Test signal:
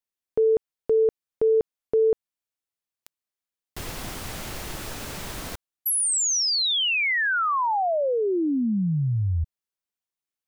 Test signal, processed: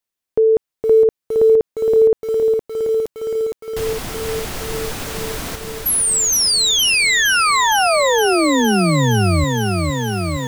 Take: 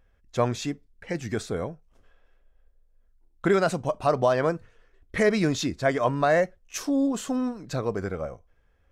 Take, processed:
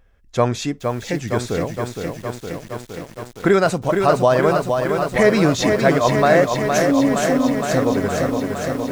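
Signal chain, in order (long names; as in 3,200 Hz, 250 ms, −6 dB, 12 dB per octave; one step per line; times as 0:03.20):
feedback echo at a low word length 464 ms, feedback 80%, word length 8 bits, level −5 dB
level +6.5 dB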